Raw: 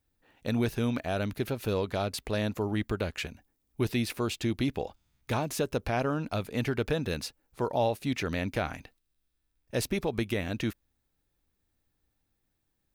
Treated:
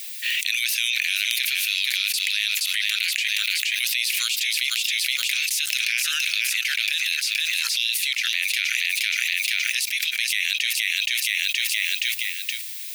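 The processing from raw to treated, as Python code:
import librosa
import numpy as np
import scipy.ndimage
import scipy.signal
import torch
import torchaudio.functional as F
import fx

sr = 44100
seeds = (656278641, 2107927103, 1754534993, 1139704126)

p1 = scipy.signal.sosfilt(scipy.signal.butter(8, 2100.0, 'highpass', fs=sr, output='sos'), x)
p2 = p1 + fx.echo_feedback(p1, sr, ms=472, feedback_pct=36, wet_db=-8.5, dry=0)
p3 = fx.env_flatten(p2, sr, amount_pct=100)
y = p3 * 10.0 ** (8.0 / 20.0)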